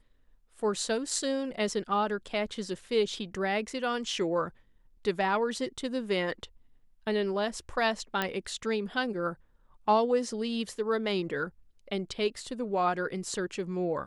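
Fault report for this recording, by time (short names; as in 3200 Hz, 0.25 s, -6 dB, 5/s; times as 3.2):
8.22 pop -14 dBFS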